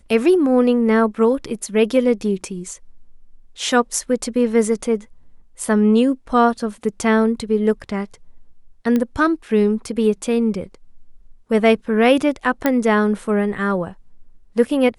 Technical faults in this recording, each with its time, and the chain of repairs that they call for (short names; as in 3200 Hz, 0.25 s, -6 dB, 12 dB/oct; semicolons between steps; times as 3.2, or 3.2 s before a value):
8.96 pop -9 dBFS
12.66 pop -4 dBFS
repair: de-click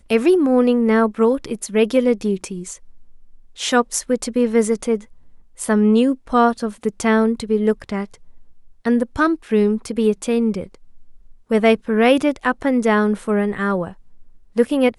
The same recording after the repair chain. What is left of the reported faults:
8.96 pop